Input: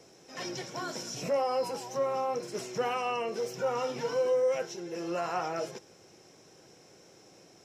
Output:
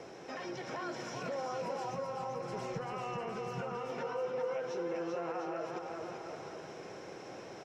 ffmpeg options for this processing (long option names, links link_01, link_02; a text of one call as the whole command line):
ffmpeg -i in.wav -filter_complex "[0:a]equalizer=frequency=1300:width=0.34:gain=7.5,acompressor=threshold=-40dB:ratio=4,alimiter=level_in=12.5dB:limit=-24dB:level=0:latency=1:release=58,volume=-12.5dB,lowpass=frequency=2000:poles=1,aecho=1:1:390|702|951.6|1151|1311:0.631|0.398|0.251|0.158|0.1,asplit=3[link_01][link_02][link_03];[link_01]afade=type=out:start_time=1.89:duration=0.02[link_04];[link_02]asubboost=boost=6.5:cutoff=160,afade=type=in:start_time=1.89:duration=0.02,afade=type=out:start_time=3.89:duration=0.02[link_05];[link_03]afade=type=in:start_time=3.89:duration=0.02[link_06];[link_04][link_05][link_06]amix=inputs=3:normalize=0,volume=5dB" out.wav